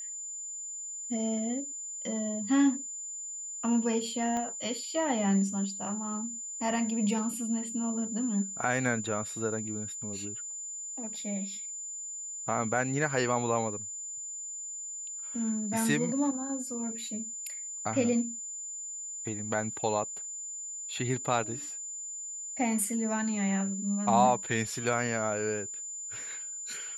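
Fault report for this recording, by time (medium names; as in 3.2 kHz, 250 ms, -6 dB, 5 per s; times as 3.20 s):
whine 7.1 kHz -37 dBFS
4.37 s: pop -22 dBFS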